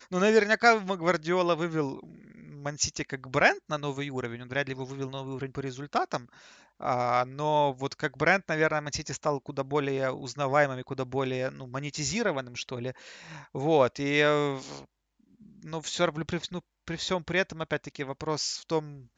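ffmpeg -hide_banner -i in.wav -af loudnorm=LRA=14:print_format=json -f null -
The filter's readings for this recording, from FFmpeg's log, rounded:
"input_i" : "-29.1",
"input_tp" : "-8.2",
"input_lra" : "4.3",
"input_thresh" : "-39.6",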